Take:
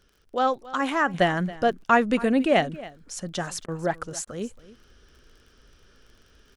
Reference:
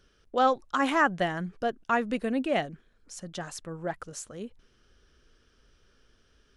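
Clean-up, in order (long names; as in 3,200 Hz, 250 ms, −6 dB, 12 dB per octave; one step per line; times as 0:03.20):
click removal
repair the gap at 0:03.66/0:04.25, 21 ms
echo removal 275 ms −18.5 dB
level correction −7 dB, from 0:01.14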